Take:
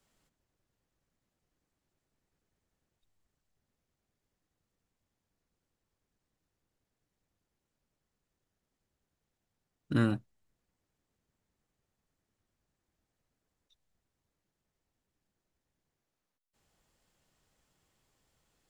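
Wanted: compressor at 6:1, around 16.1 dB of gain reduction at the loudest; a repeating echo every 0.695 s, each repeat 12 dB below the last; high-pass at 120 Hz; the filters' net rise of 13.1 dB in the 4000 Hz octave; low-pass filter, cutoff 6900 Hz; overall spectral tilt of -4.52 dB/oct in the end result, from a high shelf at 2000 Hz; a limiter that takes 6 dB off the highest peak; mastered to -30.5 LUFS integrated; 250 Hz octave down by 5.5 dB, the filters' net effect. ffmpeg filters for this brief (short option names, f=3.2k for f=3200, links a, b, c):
-af "highpass=120,lowpass=6.9k,equalizer=f=250:t=o:g=-6.5,highshelf=f=2k:g=8.5,equalizer=f=4k:t=o:g=8.5,acompressor=threshold=-42dB:ratio=6,alimiter=level_in=11.5dB:limit=-24dB:level=0:latency=1,volume=-11.5dB,aecho=1:1:695|1390|2085:0.251|0.0628|0.0157,volume=27.5dB"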